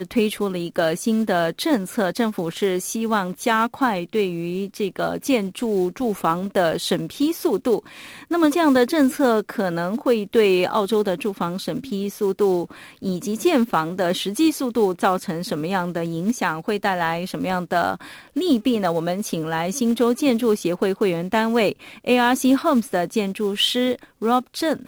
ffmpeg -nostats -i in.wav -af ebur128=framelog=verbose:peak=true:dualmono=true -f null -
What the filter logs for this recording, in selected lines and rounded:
Integrated loudness:
  I:         -18.6 LUFS
  Threshold: -28.6 LUFS
Loudness range:
  LRA:         3.1 LU
  Threshold: -38.6 LUFS
  LRA low:   -20.0 LUFS
  LRA high:  -16.8 LUFS
True peak:
  Peak:       -4.5 dBFS